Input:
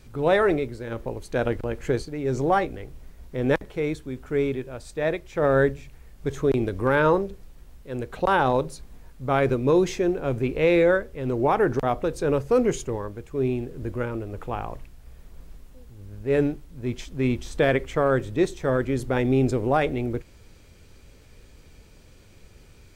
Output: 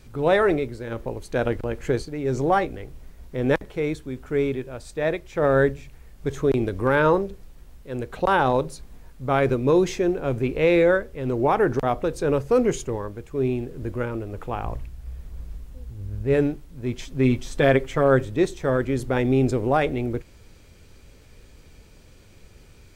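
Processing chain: 14.64–16.34 bell 63 Hz +11.5 dB 2.1 oct; 17.01–18.25 comb 7.5 ms, depth 51%; gain +1 dB

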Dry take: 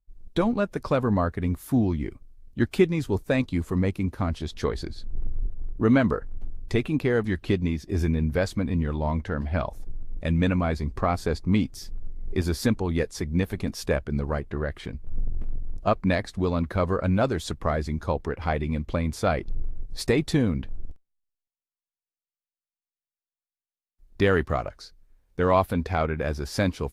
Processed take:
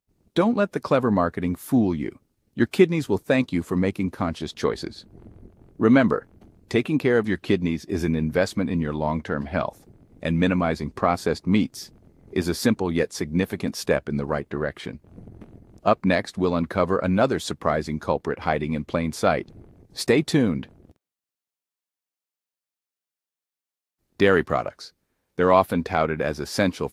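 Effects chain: HPF 160 Hz 12 dB/oct; gain +4 dB

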